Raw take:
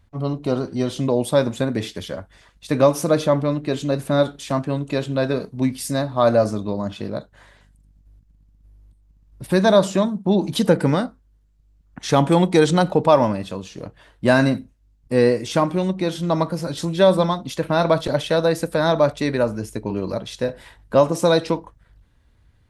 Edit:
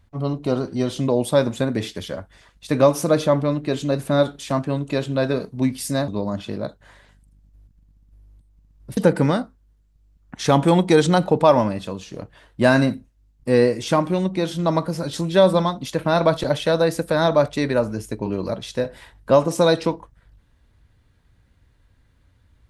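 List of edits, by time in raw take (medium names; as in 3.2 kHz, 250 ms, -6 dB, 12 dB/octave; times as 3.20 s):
6.08–6.60 s: delete
9.49–10.61 s: delete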